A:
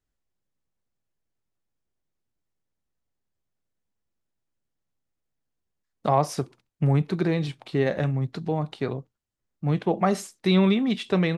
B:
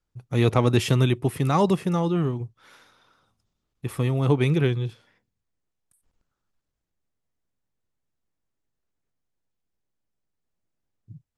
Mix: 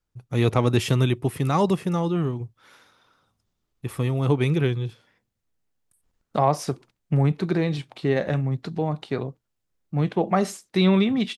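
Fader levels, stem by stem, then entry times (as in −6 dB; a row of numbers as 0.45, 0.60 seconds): +1.0, −0.5 decibels; 0.30, 0.00 seconds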